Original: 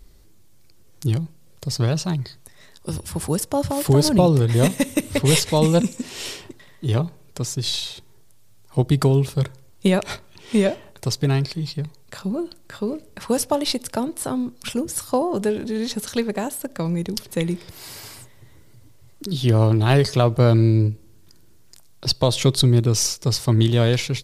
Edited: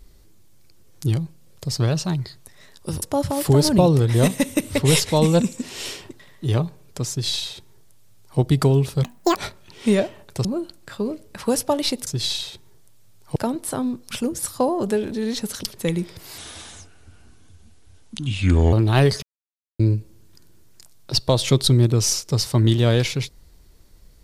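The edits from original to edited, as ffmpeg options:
ffmpeg -i in.wav -filter_complex "[0:a]asplit=12[link_01][link_02][link_03][link_04][link_05][link_06][link_07][link_08][link_09][link_10][link_11][link_12];[link_01]atrim=end=3.022[link_13];[link_02]atrim=start=3.418:end=9.444[link_14];[link_03]atrim=start=9.44:end=10.04,asetpts=PTS-STARTPTS,asetrate=80703,aresample=44100,atrim=end_sample=14459,asetpts=PTS-STARTPTS[link_15];[link_04]atrim=start=10.036:end=11.122[link_16];[link_05]atrim=start=12.268:end=13.892[link_17];[link_06]atrim=start=7.498:end=8.792[link_18];[link_07]atrim=start=13.888:end=16.162[link_19];[link_08]atrim=start=17.148:end=17.904[link_20];[link_09]atrim=start=17.9:end=19.66,asetpts=PTS-STARTPTS,asetrate=33075,aresample=44100[link_21];[link_10]atrim=start=19.656:end=20.16,asetpts=PTS-STARTPTS,afade=type=out:start_time=0.5:duration=0.004:curve=hsin[link_22];[link_11]atrim=start=20.16:end=20.73,asetpts=PTS-STARTPTS,volume=0[link_23];[link_12]atrim=start=20.73,asetpts=PTS-STARTPTS,afade=type=in:duration=0.004:curve=hsin[link_24];[link_13][link_14]acrossfade=duration=0.004:curve1=hsin:curve2=hsin[link_25];[link_25][link_15]acrossfade=duration=0.004:curve1=hsin:curve2=hsin[link_26];[link_26][link_16]acrossfade=duration=0.004:curve1=hsin:curve2=hsin[link_27];[link_27][link_17]acrossfade=duration=0.004:curve1=hsin:curve2=hsin[link_28];[link_28][link_18]acrossfade=duration=0.004:curve1=hsin:curve2=hsin[link_29];[link_29][link_19]acrossfade=duration=0.004:curve1=hsin:curve2=hsin[link_30];[link_30][link_20]acrossfade=duration=0.004:curve1=hsin:curve2=hsin[link_31];[link_31][link_21]acrossfade=duration=0.004:curve1=hsin:curve2=hsin[link_32];[link_22][link_23][link_24]concat=n=3:v=0:a=1[link_33];[link_32][link_33]acrossfade=duration=0.004:curve1=hsin:curve2=hsin" out.wav

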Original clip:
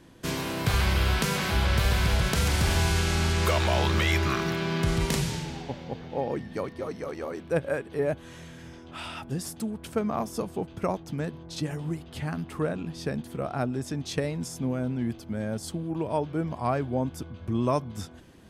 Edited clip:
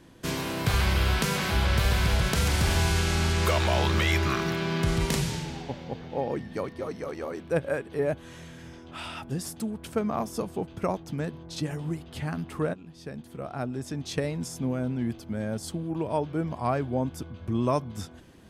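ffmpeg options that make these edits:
ffmpeg -i in.wav -filter_complex "[0:a]asplit=2[link_01][link_02];[link_01]atrim=end=12.74,asetpts=PTS-STARTPTS,afade=type=out:start_time=12.736:duration=0.004:curve=hsin:silence=0.199526[link_03];[link_02]atrim=start=12.74,asetpts=PTS-STARTPTS,afade=type=in:duration=1.53:silence=0.199526[link_04];[link_03][link_04]concat=n=2:v=0:a=1" out.wav

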